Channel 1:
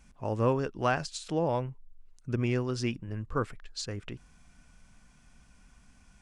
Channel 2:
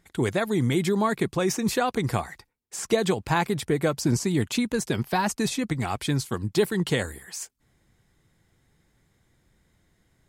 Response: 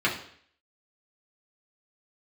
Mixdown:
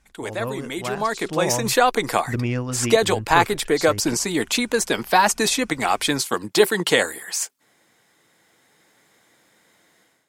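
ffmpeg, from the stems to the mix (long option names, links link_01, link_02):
-filter_complex "[0:a]volume=-5dB[link_01];[1:a]highpass=390,volume=-2dB[link_02];[link_01][link_02]amix=inputs=2:normalize=0,bandreject=frequency=380:width=12,dynaudnorm=framelen=910:gausssize=3:maxgain=15dB"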